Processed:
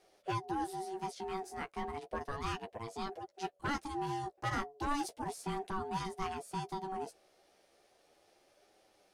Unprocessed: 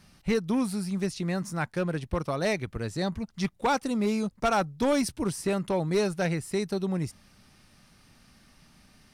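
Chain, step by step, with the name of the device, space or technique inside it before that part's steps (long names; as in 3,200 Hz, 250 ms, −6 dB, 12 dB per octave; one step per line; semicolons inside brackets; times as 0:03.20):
alien voice (ring modulation 570 Hz; flanger 0.34 Hz, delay 9 ms, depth 7.4 ms, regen −16%)
level −4.5 dB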